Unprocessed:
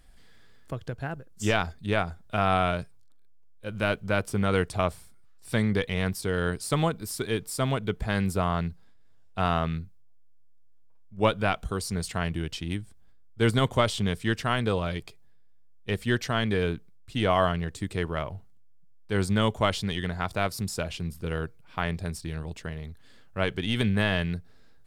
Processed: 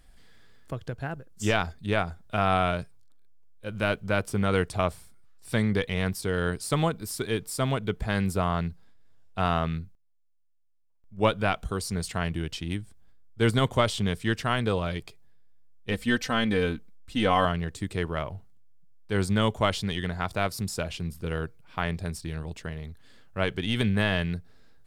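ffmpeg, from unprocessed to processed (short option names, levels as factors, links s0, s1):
-filter_complex "[0:a]asettb=1/sr,asplit=3[s0][s1][s2];[s0]atrim=end=15.914[s3];[s1]atrim=start=15.91:end=17.45,asetpts=PTS-STARTPTS,afade=t=in:d=0.004:c=qsin,afade=t=out:st=1.536:d=0.004:c=qsin,aecho=1:1:3.9:0.65,atrim=end_sample=67914[s4];[s2]atrim=start=17.446[s5];[s3][s4]acrossfade=d=0.004:c1=hsin:c2=qsin[s6];[s6][s5]acrossfade=d=0.004:c1=qsin:c2=hsin,asplit=3[s7][s8][s9];[s7]atrim=end=9.95,asetpts=PTS-STARTPTS,afade=t=out:st=9.8:d=0.15:c=log:silence=0.16788[s10];[s8]atrim=start=9.95:end=11.04,asetpts=PTS-STARTPTS,volume=0.168[s11];[s9]atrim=start=11.04,asetpts=PTS-STARTPTS,afade=t=in:d=0.15:c=log:silence=0.16788[s12];[s10][s11][s12]concat=n=3:v=0:a=1"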